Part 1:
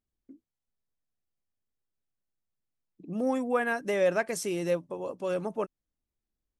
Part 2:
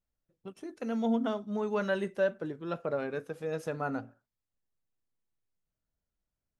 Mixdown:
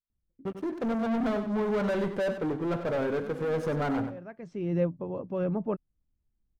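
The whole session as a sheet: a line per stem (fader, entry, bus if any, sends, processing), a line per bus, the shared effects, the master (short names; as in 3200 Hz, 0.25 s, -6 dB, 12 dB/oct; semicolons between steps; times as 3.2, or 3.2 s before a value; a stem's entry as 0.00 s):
-1.5 dB, 0.10 s, no send, no echo send, LPF 6500 Hz 24 dB/oct; tone controls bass +14 dB, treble -11 dB; auto duck -21 dB, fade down 1.10 s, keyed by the second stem
-5.5 dB, 0.00 s, no send, echo send -9.5 dB, high shelf 4200 Hz -5.5 dB; sample leveller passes 5; notch 2600 Hz, Q 26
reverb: off
echo: feedback echo 95 ms, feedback 15%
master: high shelf 3000 Hz -12 dB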